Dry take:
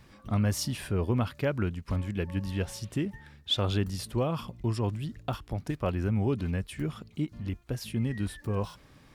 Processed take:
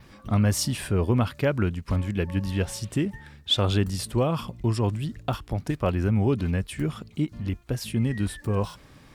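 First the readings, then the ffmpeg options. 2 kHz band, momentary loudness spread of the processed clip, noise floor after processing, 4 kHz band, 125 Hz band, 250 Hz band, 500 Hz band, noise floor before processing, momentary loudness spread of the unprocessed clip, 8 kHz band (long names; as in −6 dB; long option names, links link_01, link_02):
+5.0 dB, 8 LU, −52 dBFS, +5.0 dB, +5.0 dB, +5.0 dB, +5.0 dB, −57 dBFS, 8 LU, +6.5 dB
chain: -af "adynamicequalizer=threshold=0.00112:dfrequency=8200:dqfactor=3.8:tfrequency=8200:tqfactor=3.8:attack=5:release=100:ratio=0.375:range=2.5:mode=boostabove:tftype=bell,volume=5dB"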